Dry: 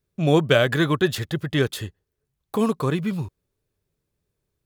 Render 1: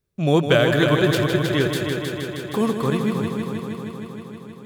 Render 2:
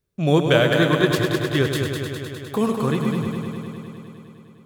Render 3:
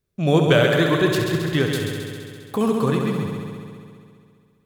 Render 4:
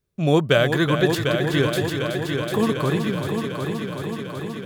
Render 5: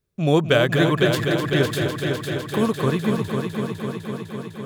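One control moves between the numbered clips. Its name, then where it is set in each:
echo machine with several playback heads, delay time: 157, 102, 67, 374, 252 milliseconds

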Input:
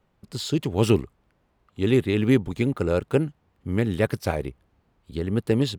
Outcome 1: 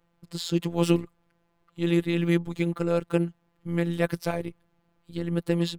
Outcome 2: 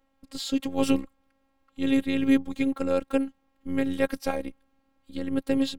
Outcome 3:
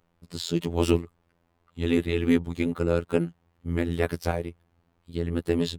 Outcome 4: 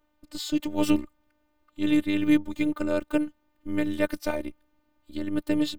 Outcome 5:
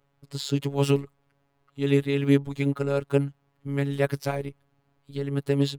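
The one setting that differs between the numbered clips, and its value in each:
phases set to zero, frequency: 170, 270, 85, 300, 140 Hertz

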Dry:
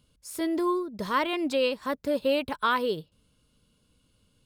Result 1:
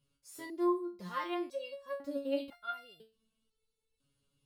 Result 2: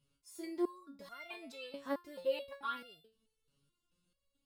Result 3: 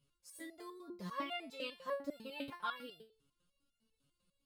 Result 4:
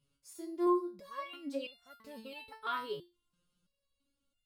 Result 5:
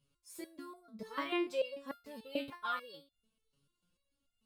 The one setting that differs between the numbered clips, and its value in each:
step-sequenced resonator, speed: 2, 4.6, 10, 3, 6.8 Hertz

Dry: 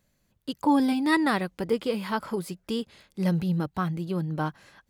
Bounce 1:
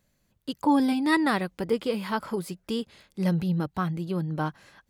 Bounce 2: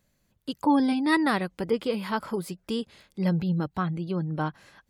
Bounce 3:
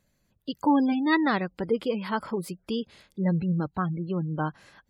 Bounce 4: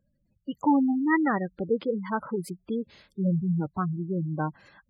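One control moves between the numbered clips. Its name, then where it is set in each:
gate on every frequency bin, under each frame's peak: −60, −45, −30, −15 decibels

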